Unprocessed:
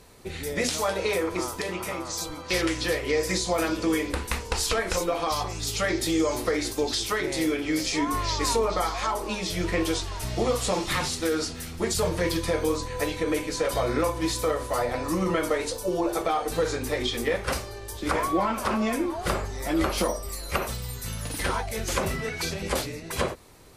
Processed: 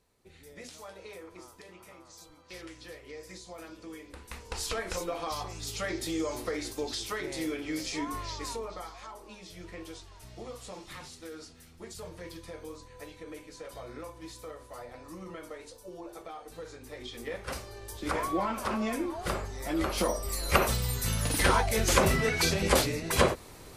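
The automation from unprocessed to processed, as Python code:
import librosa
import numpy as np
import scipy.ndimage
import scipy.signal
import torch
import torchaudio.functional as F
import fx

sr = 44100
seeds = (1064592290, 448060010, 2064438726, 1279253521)

y = fx.gain(x, sr, db=fx.line((4.07, -20.0), (4.63, -8.0), (8.01, -8.0), (9.08, -18.0), (16.79, -18.0), (17.82, -5.5), (19.85, -5.5), (20.51, 3.5)))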